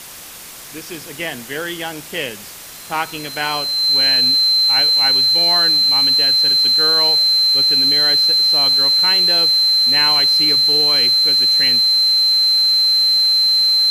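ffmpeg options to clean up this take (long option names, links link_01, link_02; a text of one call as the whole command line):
ffmpeg -i in.wav -af "bandreject=frequency=4100:width=30,afftdn=noise_reduction=29:noise_floor=-35" out.wav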